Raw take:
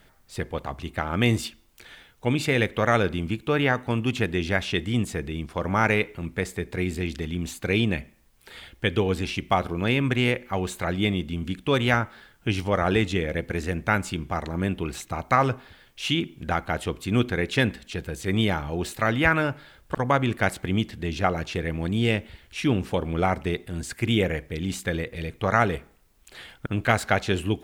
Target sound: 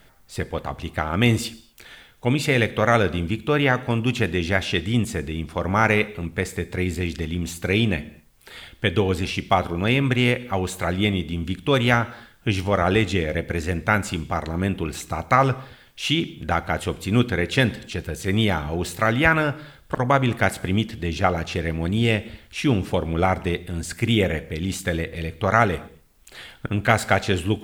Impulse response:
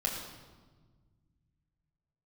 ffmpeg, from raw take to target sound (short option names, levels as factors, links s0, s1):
-filter_complex "[0:a]asplit=2[s0][s1];[s1]highshelf=f=5200:g=10.5[s2];[1:a]atrim=start_sample=2205,afade=t=out:st=0.3:d=0.01,atrim=end_sample=13671[s3];[s2][s3]afir=irnorm=-1:irlink=0,volume=0.106[s4];[s0][s4]amix=inputs=2:normalize=0,volume=1.26"